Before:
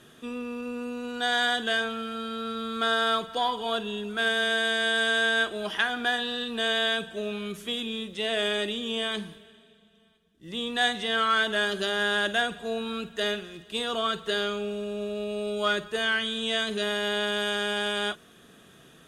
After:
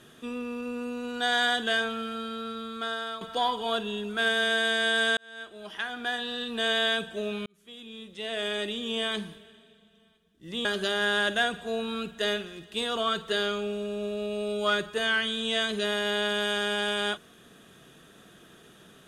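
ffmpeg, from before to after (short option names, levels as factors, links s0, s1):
-filter_complex "[0:a]asplit=5[s0][s1][s2][s3][s4];[s0]atrim=end=3.21,asetpts=PTS-STARTPTS,afade=t=out:st=2.06:d=1.15:silence=0.223872[s5];[s1]atrim=start=3.21:end=5.17,asetpts=PTS-STARTPTS,afade=t=in:d=0.004:c=hsin:silence=0.223872,afade=t=out:st=1.956:d=0.004:c=hsin[s6];[s2]atrim=start=5.17:end=7.46,asetpts=PTS-STARTPTS,afade=t=in:d=1.54,afade=t=out:st=2.286:d=0.004:c=hsin[s7];[s3]atrim=start=7.46:end=10.652,asetpts=PTS-STARTPTS,afade=t=in:d=1.57[s8];[s4]atrim=start=11.628[s9];[s5][s6][s7][s8]concat=n=4:v=0:a=1[s10];[s10][s9]acrossfade=d=0.004:c1=hsin:c2=hsin"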